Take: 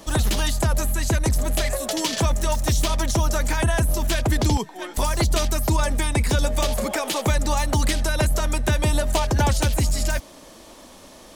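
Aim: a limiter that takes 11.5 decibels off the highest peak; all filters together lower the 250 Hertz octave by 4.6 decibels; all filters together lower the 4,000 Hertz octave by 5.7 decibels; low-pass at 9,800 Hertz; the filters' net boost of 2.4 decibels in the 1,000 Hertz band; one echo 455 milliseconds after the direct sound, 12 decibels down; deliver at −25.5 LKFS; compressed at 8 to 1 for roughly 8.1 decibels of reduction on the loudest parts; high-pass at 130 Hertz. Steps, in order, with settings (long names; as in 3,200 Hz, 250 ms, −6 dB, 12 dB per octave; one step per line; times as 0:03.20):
high-pass filter 130 Hz
low-pass filter 9,800 Hz
parametric band 250 Hz −6 dB
parametric band 1,000 Hz +3.5 dB
parametric band 4,000 Hz −7.5 dB
downward compressor 8 to 1, threshold −29 dBFS
brickwall limiter −27 dBFS
single-tap delay 455 ms −12 dB
level +11 dB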